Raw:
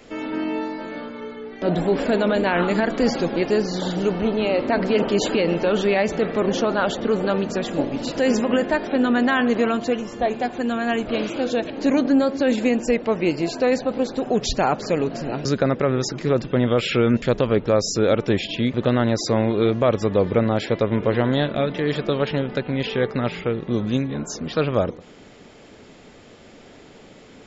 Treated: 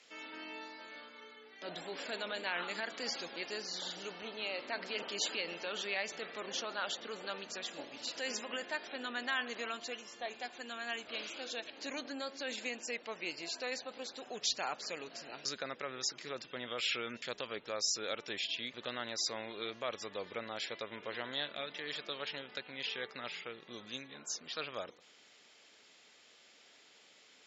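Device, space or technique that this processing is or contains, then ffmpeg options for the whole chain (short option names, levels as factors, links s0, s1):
piezo pickup straight into a mixer: -af "lowpass=5200,aderivative"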